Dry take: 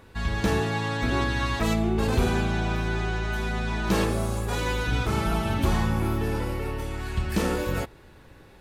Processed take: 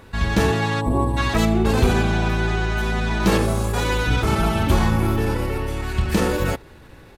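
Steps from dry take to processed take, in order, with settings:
gain on a spectral selection 0:00.97–0:01.40, 1,200–7,600 Hz −22 dB
tempo change 1.2×
level +6 dB

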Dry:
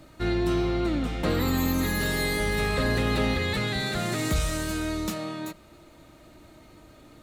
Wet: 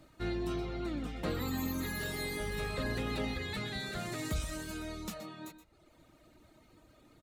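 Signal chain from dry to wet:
reverb reduction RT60 0.82 s
multi-tap delay 123/127 ms −13.5/−17.5 dB
level −8.5 dB

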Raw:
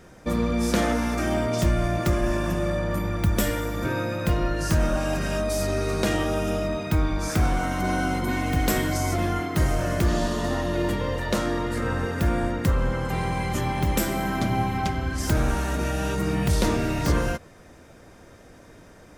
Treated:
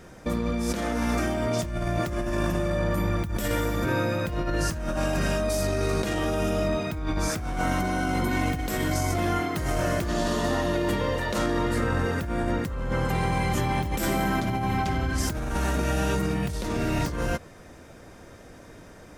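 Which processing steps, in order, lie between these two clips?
0:09.17–0:11.39: low-shelf EQ 170 Hz −4.5 dB
compressor whose output falls as the input rises −26 dBFS, ratio −1

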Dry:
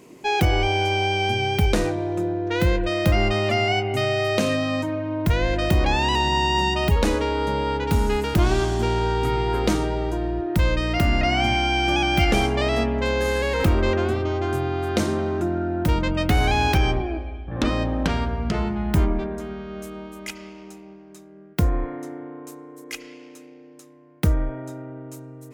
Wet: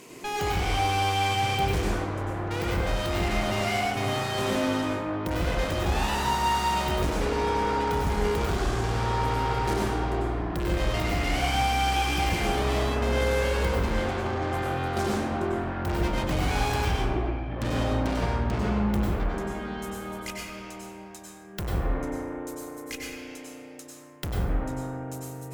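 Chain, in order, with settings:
tube saturation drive 30 dB, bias 0.65
dense smooth reverb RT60 0.99 s, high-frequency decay 0.5×, pre-delay 85 ms, DRR −3.5 dB
one half of a high-frequency compander encoder only

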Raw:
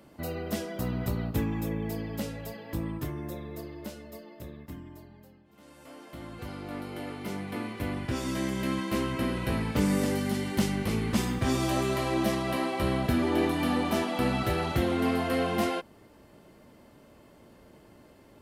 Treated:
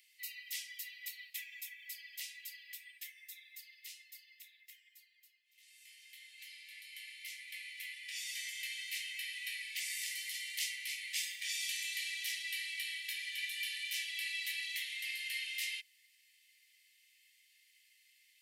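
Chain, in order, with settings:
Butterworth high-pass 1,900 Hz 96 dB per octave

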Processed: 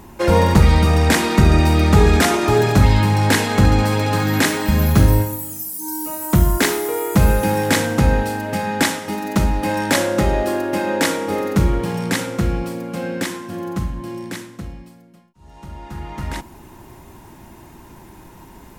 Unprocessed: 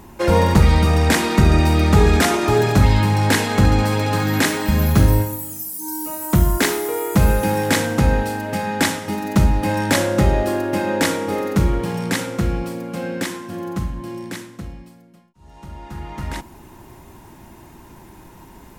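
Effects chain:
0:08.83–0:11.30: parametric band 95 Hz −7.5 dB 1.6 octaves
level +1 dB

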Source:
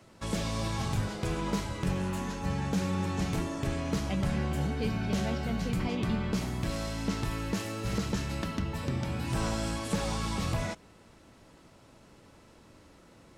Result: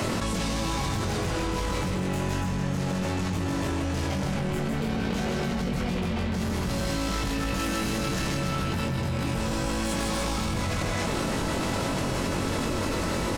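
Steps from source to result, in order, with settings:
brickwall limiter −28 dBFS, peak gain reduction 7 dB
automatic gain control gain up to 14.5 dB
soft clipping −24 dBFS, distortion −10 dB
double-tracking delay 22 ms −3.5 dB
loudspeakers that aren't time-aligned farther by 54 metres −3 dB, 99 metres −4 dB
envelope flattener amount 100%
level −9 dB

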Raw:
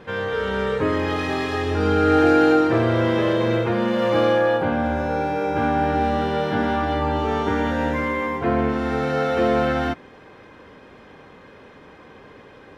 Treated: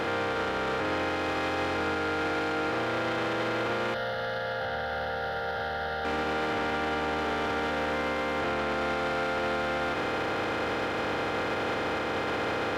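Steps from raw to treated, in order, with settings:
compressor on every frequency bin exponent 0.2
soft clipping −10.5 dBFS, distortion −15 dB
low-shelf EQ 470 Hz −9 dB
brickwall limiter −19 dBFS, peak gain reduction 8.5 dB
0:03.94–0:06.05: phaser with its sweep stopped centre 1,600 Hz, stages 8
level −3.5 dB

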